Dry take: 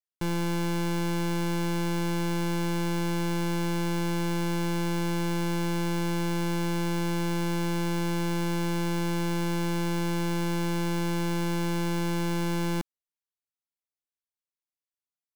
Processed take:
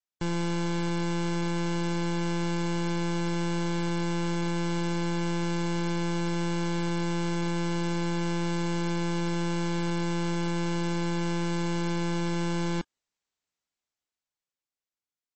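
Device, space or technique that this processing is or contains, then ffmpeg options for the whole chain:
low-bitrate web radio: -af "dynaudnorm=framelen=320:gausssize=11:maxgain=10dB,alimiter=level_in=3.5dB:limit=-24dB:level=0:latency=1,volume=-3.5dB" -ar 24000 -c:a libmp3lame -b:a 32k

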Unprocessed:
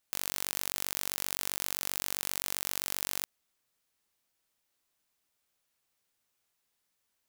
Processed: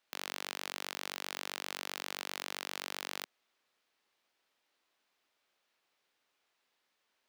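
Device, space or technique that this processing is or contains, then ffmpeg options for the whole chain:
DJ mixer with the lows and highs turned down: -filter_complex "[0:a]acrossover=split=240 4800:gain=0.158 1 0.158[link_01][link_02][link_03];[link_01][link_02][link_03]amix=inputs=3:normalize=0,alimiter=level_in=1dB:limit=-24dB:level=0:latency=1:release=18,volume=-1dB,volume=6dB"

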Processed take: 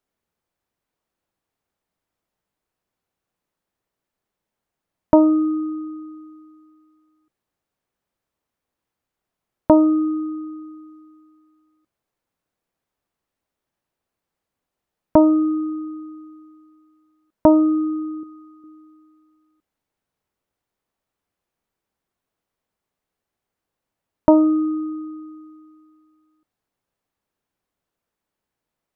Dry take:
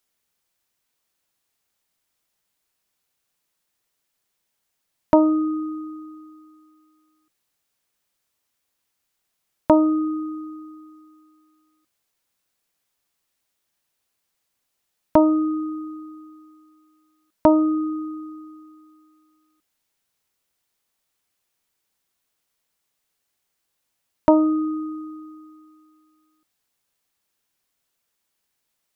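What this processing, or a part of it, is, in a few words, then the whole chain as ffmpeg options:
through cloth: -filter_complex "[0:a]highshelf=frequency=1900:gain=-16.5,asettb=1/sr,asplit=3[link_01][link_02][link_03];[link_01]atrim=end=18.234[link_04];[link_02]atrim=start=18.23:end=18.64,asetpts=PTS-STARTPTS,afade=type=in:duration=0.004:curve=qsin,afade=type=out:start_time=0.406:duration=0.004:curve=qsin,lowshelf=frequency=420:gain=-11.5[link_05];[link_03]atrim=start=18.636[link_06];[link_04][link_05]acrossfade=duration=0.004:curve1=hsin:curve2=qsin[link_07];[link_07][link_06]acrossfade=duration=0.004:curve1=qsin:curve2=hsin,volume=3.5dB"

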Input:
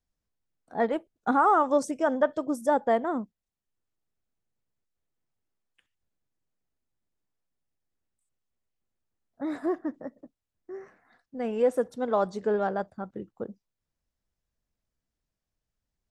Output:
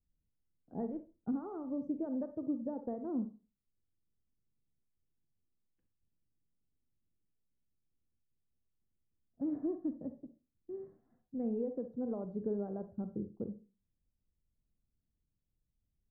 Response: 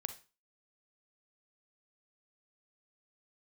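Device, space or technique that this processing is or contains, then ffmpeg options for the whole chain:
television next door: -filter_complex "[0:a]asettb=1/sr,asplit=3[link_01][link_02][link_03];[link_01]atrim=end=0.904[link_04];[link_02]atrim=start=0.9:end=1.85,asetpts=PTS-STARTPTS,afade=type=in:duration=0.004:curve=qsin,afade=type=out:start_time=0.946:duration=0.004:curve=qsin,equalizer=frequency=730:width=0.5:gain=-8.5[link_05];[link_03]atrim=start=1.846[link_06];[link_04][link_05]acrossfade=duration=0.004:curve1=hsin:curve2=qsin[link_07];[link_07][link_06]acrossfade=duration=0.004:curve1=qsin:curve2=hsin,acompressor=threshold=-30dB:ratio=4,lowpass=290[link_08];[1:a]atrim=start_sample=2205[link_09];[link_08][link_09]afir=irnorm=-1:irlink=0,volume=4dB"

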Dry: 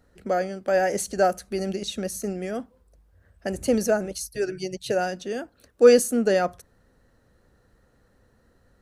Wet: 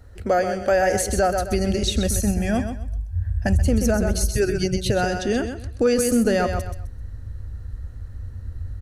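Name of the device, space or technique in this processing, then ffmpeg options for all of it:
car stereo with a boomy subwoofer: -filter_complex "[0:a]asettb=1/sr,asplit=3[link_01][link_02][link_03];[link_01]atrim=end=4.964[link_04];[link_02]atrim=start=4.96:end=5.91,asetpts=PTS-STARTPTS,afade=type=in:duration=0.004:curve=qsin,afade=type=out:start_time=0.946:duration=0.004:curve=qsin,lowpass=frequency=11000:width=0.5412,lowpass=frequency=11000:width=1.3066[link_05];[link_03]atrim=start=5.906[link_06];[link_04][link_05]acrossfade=duration=0.004:curve1=hsin:curve2=qsin[link_07];[link_07][link_06]acrossfade=duration=0.004:curve1=qsin:curve2=hsin,asubboost=boost=5:cutoff=220,asettb=1/sr,asplit=3[link_08][link_09][link_10];[link_08]atrim=end=2.104[link_11];[link_09]atrim=start=2.1:end=3.65,asetpts=PTS-STARTPTS,afade=type=in:duration=0.004:curve=qsin,afade=type=out:start_time=1.546:duration=0.004:curve=qsin,aecho=1:1:1.2:0.59,atrim=end_sample=68355[link_12];[link_10]atrim=start=3.646[link_13];[link_11][link_12]acrossfade=duration=0.004:curve1=hsin:curve2=qsin[link_14];[link_14][link_13]acrossfade=duration=0.004:curve1=qsin:curve2=hsin,lowshelf=frequency=120:width_type=q:width=3:gain=7.5,aecho=1:1:129|258|387:0.376|0.094|0.0235,alimiter=limit=-18.5dB:level=0:latency=1:release=230,volume=8dB"

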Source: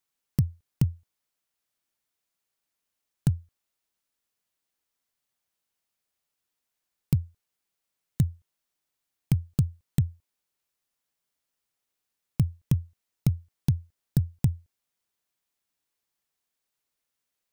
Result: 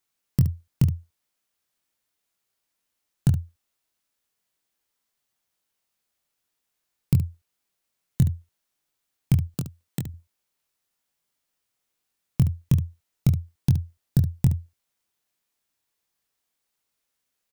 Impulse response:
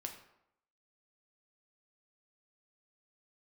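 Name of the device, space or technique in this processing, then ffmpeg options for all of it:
slapback doubling: -filter_complex "[0:a]asettb=1/sr,asplit=3[link_01][link_02][link_03];[link_01]atrim=end=9.474[link_04];[link_02]atrim=start=9.47:end=10.07,asetpts=PTS-STARTPTS,afade=type=in:duration=0.004:curve=qsin,afade=type=out:start_time=0.596:duration=0.004:curve=qsin,highpass=240[link_05];[link_03]atrim=start=10.066[link_06];[link_04][link_05]acrossfade=duration=0.004:curve1=hsin:curve2=qsin[link_07];[link_07][link_06]acrossfade=duration=0.004:curve1=qsin:curve2=hsin,asplit=3[link_08][link_09][link_10];[link_09]adelay=23,volume=-6dB[link_11];[link_10]adelay=71,volume=-11dB[link_12];[link_08][link_11][link_12]amix=inputs=3:normalize=0,volume=2.5dB"

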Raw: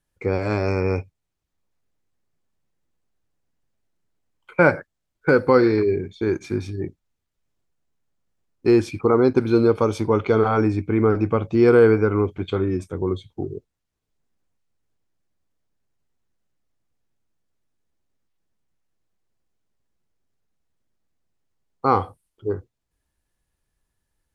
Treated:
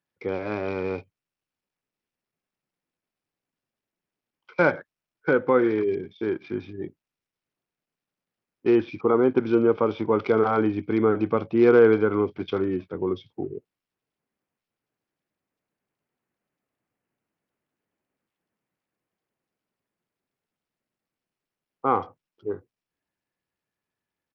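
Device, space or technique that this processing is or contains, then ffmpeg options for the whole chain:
Bluetooth headset: -af "highpass=42,highpass=170,dynaudnorm=framelen=470:gausssize=17:maxgain=11dB,aresample=8000,aresample=44100,volume=-5dB" -ar 44100 -c:a sbc -b:a 64k

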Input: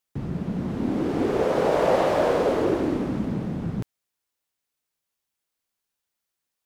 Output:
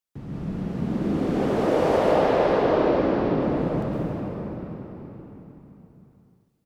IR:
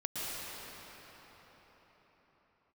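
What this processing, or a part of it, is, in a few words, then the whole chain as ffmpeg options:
cathedral: -filter_complex "[0:a]asettb=1/sr,asplit=3[link_01][link_02][link_03];[link_01]atrim=end=1.974[link_04];[link_02]atrim=start=1.97:end=3.42,asetpts=PTS-STARTPTS,afade=type=in:duration=0.004:curve=qsin,afade=type=out:start_time=1.446:duration=0.004:curve=qsin,lowpass=frequency=5100:width=0.5412,lowpass=frequency=5100:width=1.3066[link_05];[link_03]atrim=start=3.416[link_06];[link_04][link_05]acrossfade=duration=0.004:curve1=hsin:curve2=qsin[link_07];[link_07][link_06]acrossfade=duration=0.004:curve1=qsin:curve2=hsin,aecho=1:1:452|904|1356:0.0708|0.0368|0.0191[link_08];[1:a]atrim=start_sample=2205[link_09];[link_08][link_09]afir=irnorm=-1:irlink=0,volume=-4dB"

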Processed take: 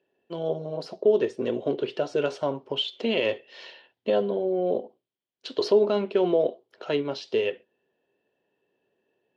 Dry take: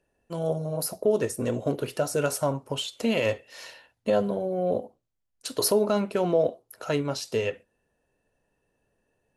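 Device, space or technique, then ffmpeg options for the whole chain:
kitchen radio: -af "highpass=200,equalizer=frequency=380:width_type=q:width=4:gain=9,equalizer=frequency=1300:width_type=q:width=4:gain=-4,equalizer=frequency=3200:width_type=q:width=4:gain=8,lowpass=frequency=4500:width=0.5412,lowpass=frequency=4500:width=1.3066,volume=-1.5dB"

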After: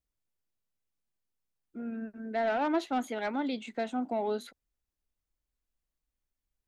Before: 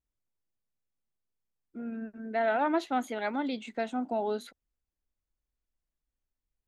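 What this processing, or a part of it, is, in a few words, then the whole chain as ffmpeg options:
one-band saturation: -filter_complex "[0:a]acrossover=split=550|3600[link_01][link_02][link_03];[link_02]asoftclip=type=tanh:threshold=-28dB[link_04];[link_01][link_04][link_03]amix=inputs=3:normalize=0"

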